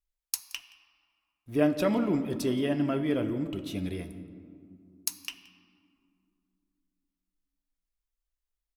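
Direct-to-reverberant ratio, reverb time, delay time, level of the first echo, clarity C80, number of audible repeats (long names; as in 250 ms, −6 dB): 9.5 dB, 2.5 s, 173 ms, −21.5 dB, 12.0 dB, 1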